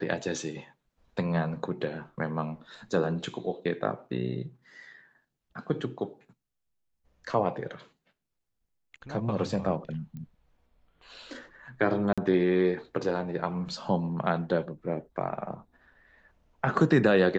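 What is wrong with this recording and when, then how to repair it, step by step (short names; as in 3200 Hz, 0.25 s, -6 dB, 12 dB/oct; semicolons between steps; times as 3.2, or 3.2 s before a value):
10.17 pop -31 dBFS
12.13–12.18 gap 46 ms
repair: de-click; interpolate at 12.13, 46 ms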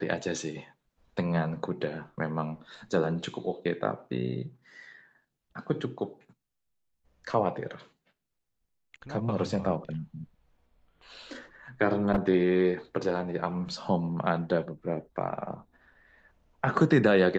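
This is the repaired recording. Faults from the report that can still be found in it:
10.17 pop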